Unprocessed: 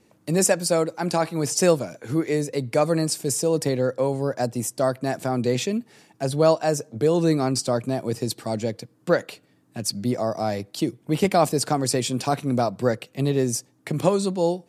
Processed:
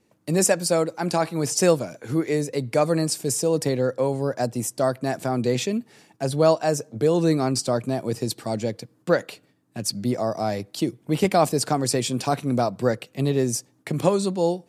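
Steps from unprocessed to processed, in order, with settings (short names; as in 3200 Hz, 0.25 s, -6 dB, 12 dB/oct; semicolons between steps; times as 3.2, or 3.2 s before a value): gate -56 dBFS, range -6 dB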